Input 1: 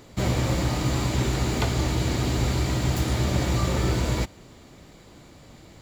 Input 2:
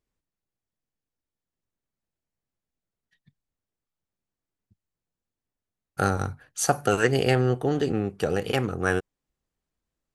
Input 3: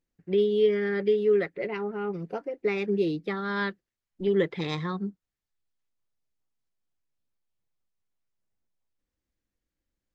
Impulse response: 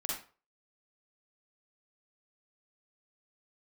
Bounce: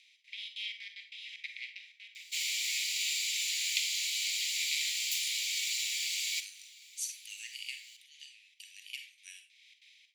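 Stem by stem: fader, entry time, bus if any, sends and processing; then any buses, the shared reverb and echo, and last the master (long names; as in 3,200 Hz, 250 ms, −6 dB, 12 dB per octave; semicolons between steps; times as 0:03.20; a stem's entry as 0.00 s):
+1.0 dB, 2.15 s, send −10 dB, no processing
−13.0 dB, 0.40 s, send −3.5 dB, no processing
−4.5 dB, 0.00 s, send −4.5 dB, compressor on every frequency bin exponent 0.4; gate pattern "xx.xxx.xx.x.x.x" 188 BPM; rotating-speaker cabinet horn 1.2 Hz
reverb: on, RT60 0.40 s, pre-delay 40 ms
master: Butterworth high-pass 2,200 Hz 72 dB per octave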